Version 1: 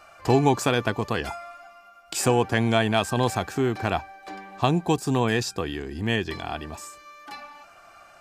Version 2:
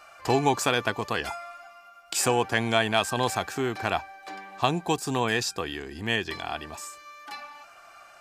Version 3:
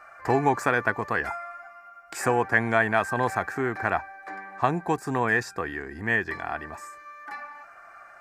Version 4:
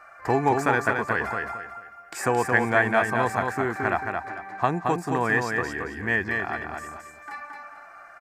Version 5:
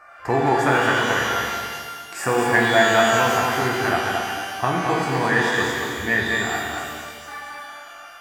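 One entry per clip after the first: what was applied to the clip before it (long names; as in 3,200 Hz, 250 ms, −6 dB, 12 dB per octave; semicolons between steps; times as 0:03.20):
low-shelf EQ 460 Hz −9.5 dB; level +1.5 dB
high shelf with overshoot 2,400 Hz −9 dB, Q 3
repeating echo 222 ms, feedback 30%, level −4.5 dB
reverb with rising layers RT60 1.5 s, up +12 semitones, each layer −8 dB, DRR −1.5 dB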